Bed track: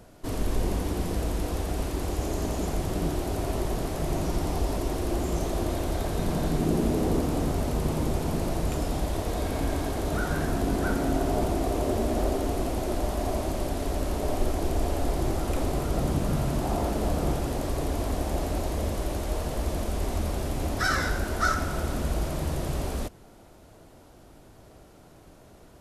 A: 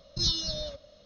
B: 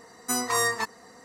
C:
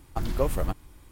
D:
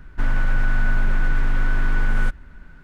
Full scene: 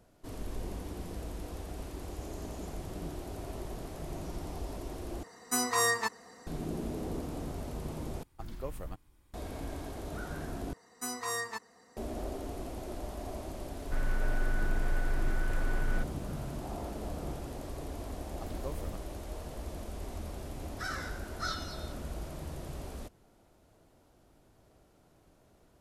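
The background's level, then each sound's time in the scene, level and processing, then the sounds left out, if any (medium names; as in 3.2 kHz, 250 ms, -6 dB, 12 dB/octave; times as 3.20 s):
bed track -12 dB
5.23 s: replace with B -3 dB
8.23 s: replace with C -14 dB
10.73 s: replace with B -10.5 dB
13.73 s: add D -12 dB + bit crusher 10-bit
18.25 s: add C -15 dB
21.23 s: add A -14.5 dB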